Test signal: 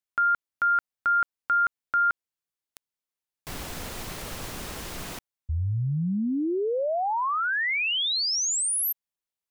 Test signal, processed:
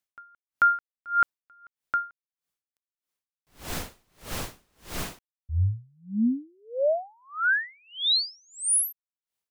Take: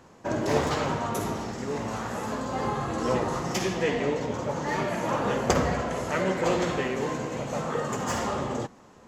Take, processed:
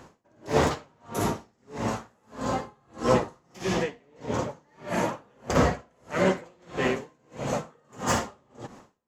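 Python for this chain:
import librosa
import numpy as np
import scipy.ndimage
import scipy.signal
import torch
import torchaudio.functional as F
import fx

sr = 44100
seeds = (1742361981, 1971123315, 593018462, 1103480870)

y = x * 10.0 ** (-40 * (0.5 - 0.5 * np.cos(2.0 * np.pi * 1.6 * np.arange(len(x)) / sr)) / 20.0)
y = y * librosa.db_to_amplitude(5.5)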